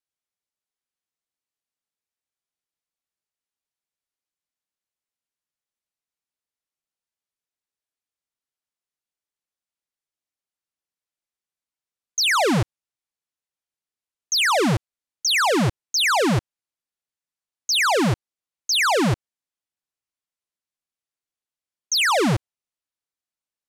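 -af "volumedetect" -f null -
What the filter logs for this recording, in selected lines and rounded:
mean_volume: -27.6 dB
max_volume: -17.0 dB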